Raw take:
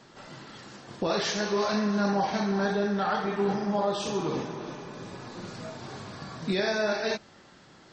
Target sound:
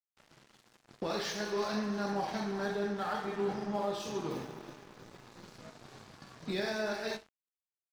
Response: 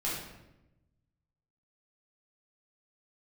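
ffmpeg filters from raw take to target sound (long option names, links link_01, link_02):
-filter_complex "[0:a]asplit=2[link_01][link_02];[1:a]atrim=start_sample=2205,atrim=end_sample=6174[link_03];[link_02][link_03]afir=irnorm=-1:irlink=0,volume=-14.5dB[link_04];[link_01][link_04]amix=inputs=2:normalize=0,aeval=exprs='sgn(val(0))*max(abs(val(0))-0.00841,0)':channel_layout=same,asettb=1/sr,asplit=3[link_05][link_06][link_07];[link_05]atrim=end=4.304[link_08];[link_06]atrim=start=4.3:end=5.57,asetpts=PTS-STARTPTS,afade=type=in:duration=0.004:curve=qsin,afade=type=out:start_time=1.266:duration=0.004:curve=qsin,acrusher=bits=6:mode=log:mix=0:aa=0.000001[link_09];[link_07]atrim=start=5.566[link_10];[link_08][link_09]acrossfade=duration=0.004:curve1=hsin:curve2=qsin[link_11];[link_11][link_10]acrossfade=duration=0.004:curve1=qsin:curve2=hsin,volume=-7.5dB"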